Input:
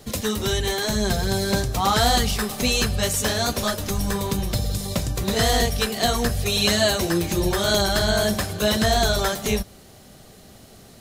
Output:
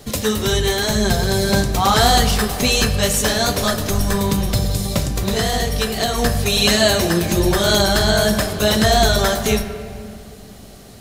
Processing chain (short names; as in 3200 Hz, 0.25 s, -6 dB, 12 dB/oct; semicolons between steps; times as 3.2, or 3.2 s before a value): 5.04–6.18 compressor, threshold -21 dBFS, peak gain reduction 6 dB; on a send: reverb RT60 2.3 s, pre-delay 7 ms, DRR 8 dB; on the sum: gain +4.5 dB